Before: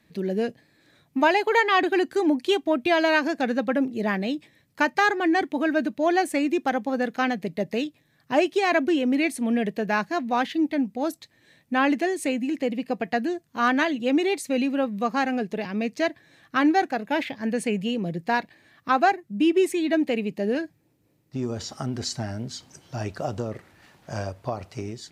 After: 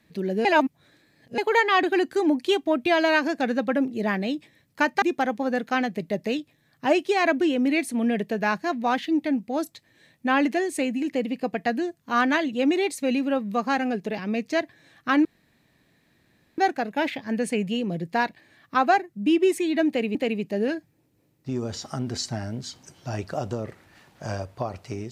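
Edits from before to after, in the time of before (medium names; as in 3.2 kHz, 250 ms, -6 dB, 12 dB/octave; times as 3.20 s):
0.45–1.38 s: reverse
5.02–6.49 s: delete
16.72 s: insert room tone 1.33 s
20.02–20.29 s: loop, 2 plays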